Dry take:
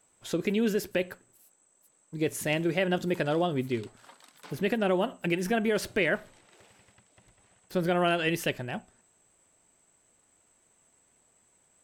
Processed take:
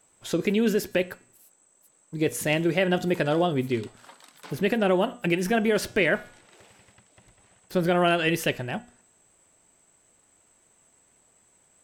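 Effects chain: de-hum 241.4 Hz, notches 30; gain +4 dB

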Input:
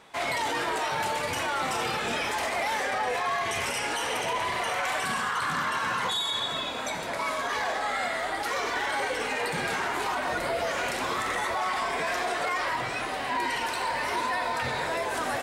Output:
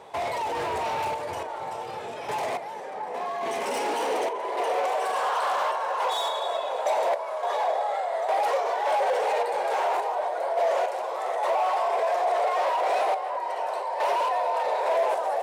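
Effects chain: band shelf 610 Hz +11.5 dB; limiter -17 dBFS, peak gain reduction 8 dB; random-step tremolo, depth 80%; on a send: echo with dull and thin repeats by turns 0.678 s, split 2200 Hz, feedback 64%, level -12 dB; on the sum: hard clip -26 dBFS, distortion -11 dB; high-pass sweep 81 Hz -> 590 Hz, 1.58–5.36

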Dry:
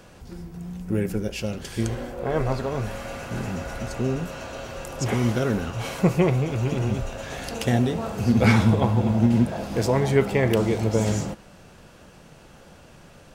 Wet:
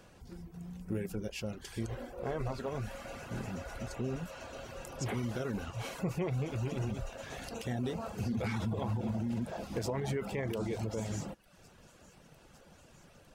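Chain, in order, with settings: limiter -16.5 dBFS, peak gain reduction 10.5 dB; thin delay 0.904 s, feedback 83%, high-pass 4900 Hz, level -18.5 dB; reverb removal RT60 0.6 s; gain -8.5 dB

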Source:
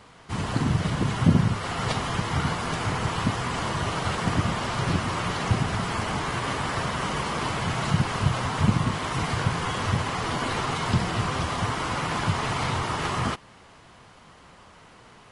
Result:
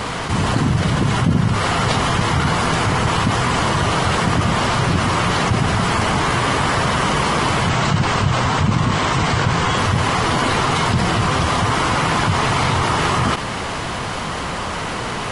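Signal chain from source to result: 7.69–9.78 steep low-pass 8700 Hz 72 dB/oct; fast leveller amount 70%

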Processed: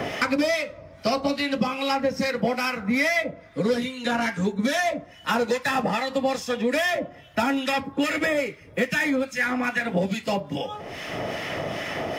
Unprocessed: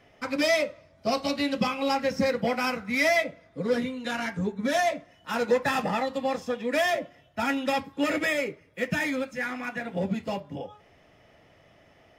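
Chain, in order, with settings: harmonic tremolo 2.4 Hz, depth 70%, crossover 1300 Hz; three-band squash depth 100%; gain +5.5 dB

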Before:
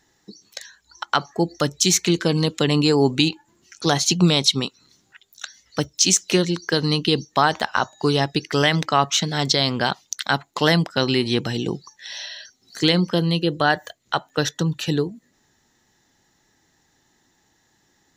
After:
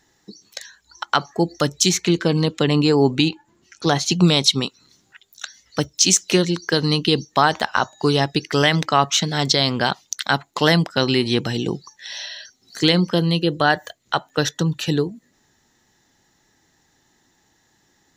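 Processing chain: 1.89–4.12 high shelf 5200 Hz -9 dB; gain +1.5 dB

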